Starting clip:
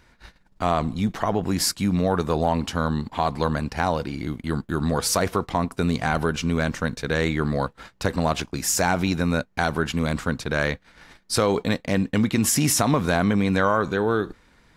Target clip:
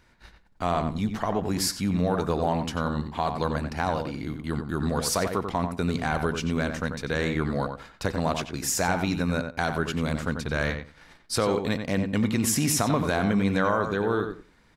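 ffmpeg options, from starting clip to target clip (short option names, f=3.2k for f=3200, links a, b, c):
-filter_complex "[0:a]asettb=1/sr,asplit=3[a][b][c];[a]atrim=end=10.274[d];[b]atrim=start=10.27:end=10.7,asetpts=PTS-STARTPTS,afade=t=in:d=0.004:c=qsin,afade=t=out:st=0.426:d=0.004:c=qsin,asubboost=boost=11:cutoff=200[e];[c]atrim=start=10.696[f];[d][e]acrossfade=d=0.004:c1=hsin:c2=qsin[g];[g][f]acrossfade=d=0.004:c1=qsin:c2=hsin,asplit=2[h][i];[i]adelay=91,lowpass=f=2.8k:p=1,volume=-6.5dB,asplit=2[j][k];[k]adelay=91,lowpass=f=2.8k:p=1,volume=0.17,asplit=2[l][m];[m]adelay=91,lowpass=f=2.8k:p=1,volume=0.17[n];[h][j][l][n]amix=inputs=4:normalize=0,volume=-4dB"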